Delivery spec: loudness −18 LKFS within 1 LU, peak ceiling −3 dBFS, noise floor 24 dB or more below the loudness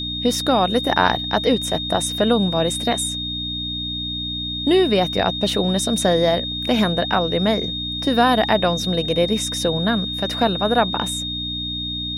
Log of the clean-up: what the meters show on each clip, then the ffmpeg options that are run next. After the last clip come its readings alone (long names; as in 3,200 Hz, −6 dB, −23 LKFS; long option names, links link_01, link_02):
mains hum 60 Hz; hum harmonics up to 300 Hz; level of the hum −30 dBFS; interfering tone 3,700 Hz; level of the tone −25 dBFS; integrated loudness −19.5 LKFS; sample peak −2.0 dBFS; target loudness −18.0 LKFS
→ -af "bandreject=frequency=60:width_type=h:width=4,bandreject=frequency=120:width_type=h:width=4,bandreject=frequency=180:width_type=h:width=4,bandreject=frequency=240:width_type=h:width=4,bandreject=frequency=300:width_type=h:width=4"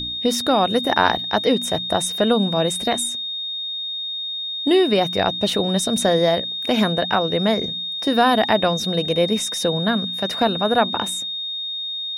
mains hum none found; interfering tone 3,700 Hz; level of the tone −25 dBFS
→ -af "bandreject=frequency=3700:width=30"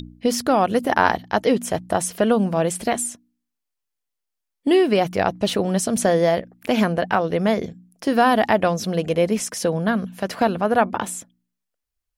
interfering tone none found; integrated loudness −21.0 LKFS; sample peak −2.5 dBFS; target loudness −18.0 LKFS
→ -af "volume=3dB,alimiter=limit=-3dB:level=0:latency=1"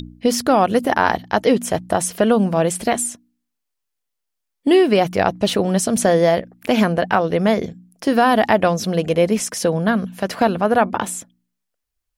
integrated loudness −18.0 LKFS; sample peak −3.0 dBFS; background noise floor −78 dBFS